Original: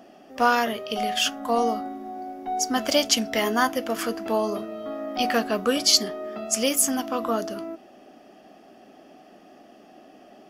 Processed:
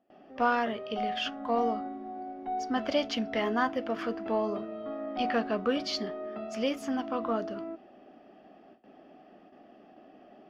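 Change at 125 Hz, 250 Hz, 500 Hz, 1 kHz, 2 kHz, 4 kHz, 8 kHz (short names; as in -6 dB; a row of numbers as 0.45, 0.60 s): -4.0, -4.5, -5.0, -5.5, -7.0, -12.5, -25.5 dB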